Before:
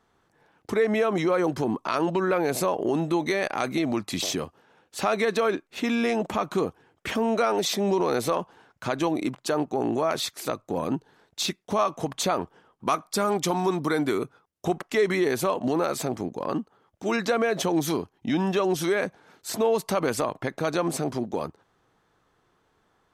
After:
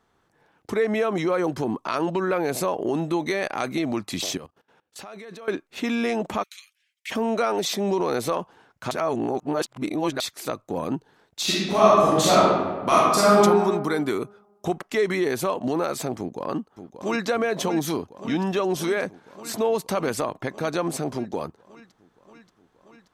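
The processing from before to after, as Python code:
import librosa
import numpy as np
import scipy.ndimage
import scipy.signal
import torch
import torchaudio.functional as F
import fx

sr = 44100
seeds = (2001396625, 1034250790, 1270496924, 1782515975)

y = fx.level_steps(x, sr, step_db=20, at=(4.37, 5.48))
y = fx.ellip_highpass(y, sr, hz=2100.0, order=4, stop_db=80, at=(6.42, 7.1), fade=0.02)
y = fx.reverb_throw(y, sr, start_s=11.43, length_s=1.94, rt60_s=1.4, drr_db=-8.5)
y = fx.echo_throw(y, sr, start_s=16.18, length_s=1.09, ms=580, feedback_pct=80, wet_db=-10.5)
y = fx.edit(y, sr, fx.reverse_span(start_s=8.91, length_s=1.29), tone=tone)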